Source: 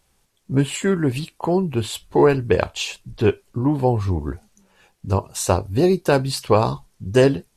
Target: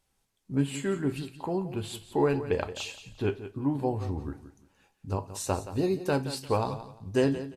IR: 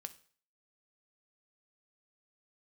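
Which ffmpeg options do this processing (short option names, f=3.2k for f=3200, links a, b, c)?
-filter_complex "[0:a]aecho=1:1:174|348|522:0.224|0.0515|0.0118[a];[1:a]atrim=start_sample=2205,asetrate=70560,aresample=44100[b];[a][b]afir=irnorm=-1:irlink=0,volume=-2dB"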